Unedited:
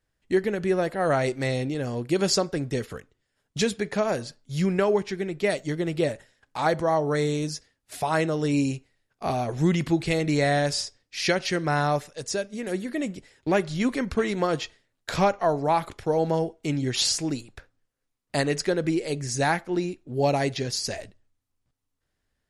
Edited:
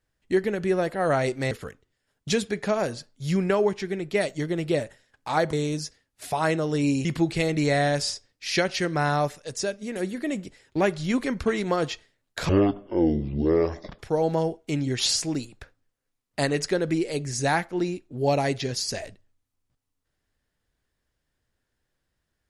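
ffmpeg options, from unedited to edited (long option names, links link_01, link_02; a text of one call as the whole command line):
ffmpeg -i in.wav -filter_complex "[0:a]asplit=6[link_01][link_02][link_03][link_04][link_05][link_06];[link_01]atrim=end=1.512[link_07];[link_02]atrim=start=2.798:end=6.822[link_08];[link_03]atrim=start=7.228:end=8.752[link_09];[link_04]atrim=start=9.758:end=15.204[link_10];[link_05]atrim=start=15.2:end=15.95,asetpts=PTS-STARTPTS,asetrate=22050,aresample=44100[link_11];[link_06]atrim=start=15.946[link_12];[link_07][link_08]acrossfade=duration=0.004:curve1=hsin:curve2=hsin[link_13];[link_13][link_09]acrossfade=duration=0.004:curve1=hsin:curve2=hsin[link_14];[link_14][link_10]acrossfade=duration=0.004:curve1=hsin:curve2=hsin[link_15];[link_15][link_11]acrossfade=duration=0.004:curve1=hsin:curve2=hsin[link_16];[link_16][link_12]acrossfade=duration=0.004:curve1=hsin:curve2=hsin" out.wav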